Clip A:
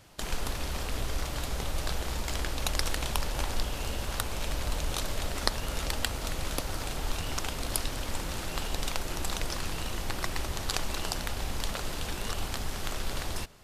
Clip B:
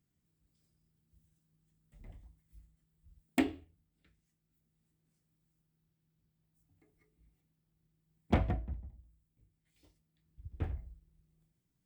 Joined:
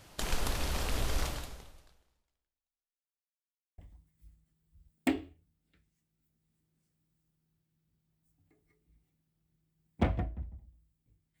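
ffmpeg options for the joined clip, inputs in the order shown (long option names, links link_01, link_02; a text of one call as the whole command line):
ffmpeg -i cue0.wav -i cue1.wav -filter_complex "[0:a]apad=whole_dur=11.4,atrim=end=11.4,asplit=2[link_01][link_02];[link_01]atrim=end=3.22,asetpts=PTS-STARTPTS,afade=type=out:start_time=1.26:duration=1.96:curve=exp[link_03];[link_02]atrim=start=3.22:end=3.78,asetpts=PTS-STARTPTS,volume=0[link_04];[1:a]atrim=start=2.09:end=9.71,asetpts=PTS-STARTPTS,afade=type=in:duration=0.004:curve=hsin[link_05];[link_03][link_04][link_05]concat=n=3:v=0:a=1" out.wav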